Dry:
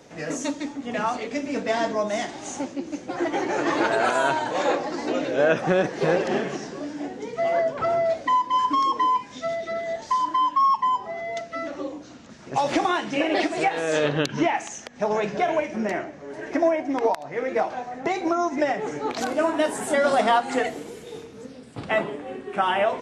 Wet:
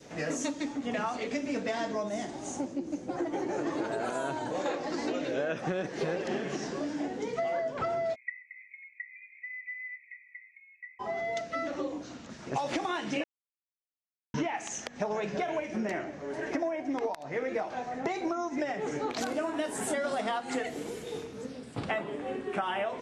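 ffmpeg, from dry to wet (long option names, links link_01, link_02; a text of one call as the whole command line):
ffmpeg -i in.wav -filter_complex "[0:a]asettb=1/sr,asplit=3[link_01][link_02][link_03];[link_01]atrim=end=2.094[link_04];[link_02]atrim=start=2.09:end=4.66,asetpts=PTS-STARTPTS,afade=type=in:duration=0.004:curve=qsin,afade=type=out:start_time=2.566:duration=0.004:curve=qsin,equalizer=frequency=2600:width=0.38:gain=-10[link_05];[link_03]atrim=start=4.656[link_06];[link_04][link_05]acrossfade=duration=0.004:curve1=hsin:curve2=qsin[link_07];[link_07][link_06]acrossfade=duration=0.004:curve1=qsin:curve2=hsin,asplit=3[link_08][link_09][link_10];[link_08]afade=type=out:start_time=8.14:duration=0.02[link_11];[link_09]asuperpass=centerf=2200:order=20:qfactor=3.5,afade=type=in:start_time=8.14:duration=0.02,afade=type=out:start_time=10.99:duration=0.02[link_12];[link_10]afade=type=in:start_time=10.99:duration=0.02[link_13];[link_11][link_12][link_13]amix=inputs=3:normalize=0,asplit=3[link_14][link_15][link_16];[link_14]atrim=end=13.24,asetpts=PTS-STARTPTS,afade=type=out:start_time=13.236:duration=0.004:curve=hsin[link_17];[link_15]atrim=start=13.24:end=14.34,asetpts=PTS-STARTPTS,volume=0[link_18];[link_16]atrim=start=14.34,asetpts=PTS-STARTPTS,afade=type=in:duration=0.004:curve=hsin[link_19];[link_17][link_18][link_19]concat=n=3:v=0:a=1,adynamicequalizer=threshold=0.02:dfrequency=890:dqfactor=0.89:tfrequency=890:tqfactor=0.89:attack=5:release=100:ratio=0.375:range=2:mode=cutabove:tftype=bell,acompressor=threshold=-29dB:ratio=6" out.wav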